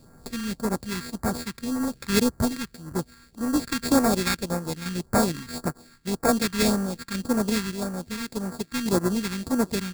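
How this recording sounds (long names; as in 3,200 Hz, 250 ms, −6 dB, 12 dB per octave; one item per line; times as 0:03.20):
a buzz of ramps at a fixed pitch in blocks of 32 samples
sample-and-hold tremolo
aliases and images of a low sample rate 3,000 Hz, jitter 0%
phaser sweep stages 2, 1.8 Hz, lowest notch 590–3,000 Hz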